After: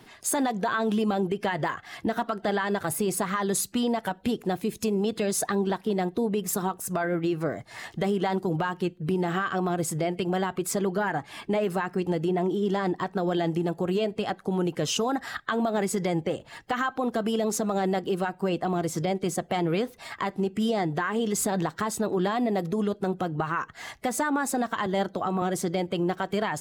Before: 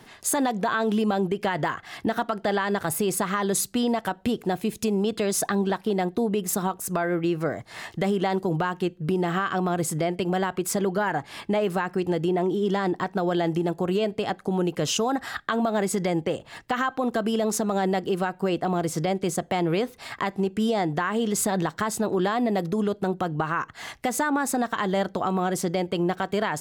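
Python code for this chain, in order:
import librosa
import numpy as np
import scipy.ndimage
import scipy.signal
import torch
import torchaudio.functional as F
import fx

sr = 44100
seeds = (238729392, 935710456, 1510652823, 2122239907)

y = fx.spec_quant(x, sr, step_db=15)
y = fx.band_widen(y, sr, depth_pct=40, at=(24.86, 25.42))
y = y * librosa.db_to_amplitude(-1.5)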